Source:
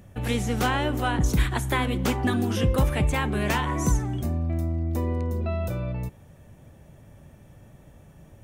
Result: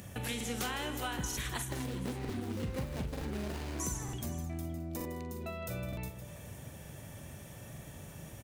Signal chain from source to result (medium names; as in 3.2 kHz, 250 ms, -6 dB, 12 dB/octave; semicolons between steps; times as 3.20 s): 1.68–3.80 s: median filter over 41 samples; high-pass 63 Hz; treble shelf 2.1 kHz +11.5 dB; compression 3:1, threshold -41 dBFS, peak gain reduction 18 dB; multi-tap echo 43/159/161/214/420/515 ms -10/-13/-17/-16.5/-17.5/-16.5 dB; crackling interface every 0.92 s, samples 2048, repeat, from 0.36 s; trim +1 dB